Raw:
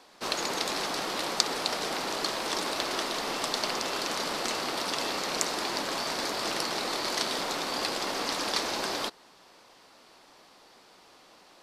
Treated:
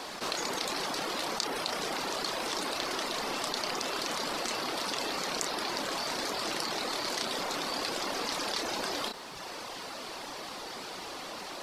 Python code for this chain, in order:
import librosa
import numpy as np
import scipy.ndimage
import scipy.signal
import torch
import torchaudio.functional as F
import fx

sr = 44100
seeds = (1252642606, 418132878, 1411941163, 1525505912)

y = fx.dereverb_blind(x, sr, rt60_s=0.7)
y = fx.doubler(y, sr, ms=31.0, db=-10.5)
y = fx.env_flatten(y, sr, amount_pct=70)
y = y * 10.0 ** (-8.5 / 20.0)